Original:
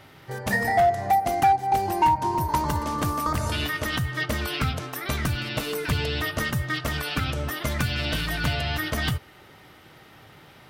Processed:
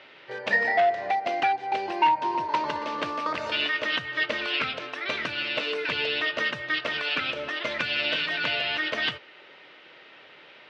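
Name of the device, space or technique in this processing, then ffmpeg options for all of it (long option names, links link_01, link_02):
phone earpiece: -af "highpass=470,equalizer=frequency=550:width_type=q:width=4:gain=3,equalizer=frequency=780:width_type=q:width=4:gain=-8,equalizer=frequency=1200:width_type=q:width=4:gain=-5,equalizer=frequency=2600:width_type=q:width=4:gain=5,lowpass=frequency=4200:width=0.5412,lowpass=frequency=4200:width=1.3066,volume=2.5dB"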